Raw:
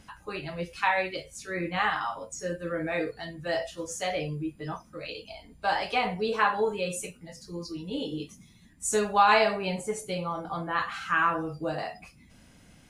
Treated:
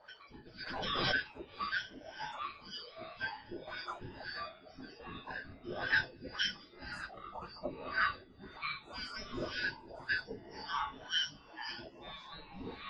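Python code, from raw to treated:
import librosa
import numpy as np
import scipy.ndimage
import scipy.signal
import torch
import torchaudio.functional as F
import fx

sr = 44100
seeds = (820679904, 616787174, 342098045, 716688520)

y = fx.band_shuffle(x, sr, order='4321')
y = fx.echo_feedback(y, sr, ms=213, feedback_pct=27, wet_db=-11.0)
y = fx.filter_lfo_lowpass(y, sr, shape='sine', hz=1.9, low_hz=380.0, high_hz=1700.0, q=3.3)
y = fx.echo_pitch(y, sr, ms=91, semitones=-5, count=3, db_per_echo=-6.0)
y = fx.pre_swell(y, sr, db_per_s=26.0, at=(0.66, 1.13), fade=0.02)
y = y * librosa.db_to_amplitude(2.0)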